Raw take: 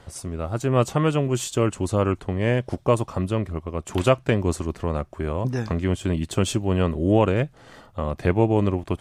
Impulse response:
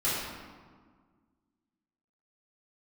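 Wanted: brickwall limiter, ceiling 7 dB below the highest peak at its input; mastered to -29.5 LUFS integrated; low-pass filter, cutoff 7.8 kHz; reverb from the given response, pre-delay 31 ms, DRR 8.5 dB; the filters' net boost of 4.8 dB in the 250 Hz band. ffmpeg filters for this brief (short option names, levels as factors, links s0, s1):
-filter_complex "[0:a]lowpass=7800,equalizer=f=250:t=o:g=6.5,alimiter=limit=0.316:level=0:latency=1,asplit=2[s0][s1];[1:a]atrim=start_sample=2205,adelay=31[s2];[s1][s2]afir=irnorm=-1:irlink=0,volume=0.119[s3];[s0][s3]amix=inputs=2:normalize=0,volume=0.447"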